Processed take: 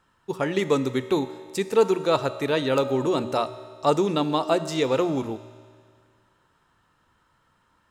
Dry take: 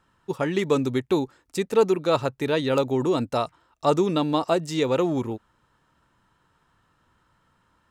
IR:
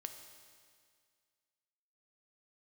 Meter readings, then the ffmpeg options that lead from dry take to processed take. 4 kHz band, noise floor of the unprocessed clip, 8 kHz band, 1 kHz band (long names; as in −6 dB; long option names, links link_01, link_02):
+1.0 dB, −68 dBFS, +1.0 dB, +1.0 dB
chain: -filter_complex "[0:a]bandreject=frequency=60:width_type=h:width=6,bandreject=frequency=120:width_type=h:width=6,bandreject=frequency=180:width_type=h:width=6,bandreject=frequency=240:width_type=h:width=6,asplit=2[link_01][link_02];[1:a]atrim=start_sample=2205,lowshelf=frequency=350:gain=-6[link_03];[link_02][link_03]afir=irnorm=-1:irlink=0,volume=5dB[link_04];[link_01][link_04]amix=inputs=2:normalize=0,volume=-5.5dB"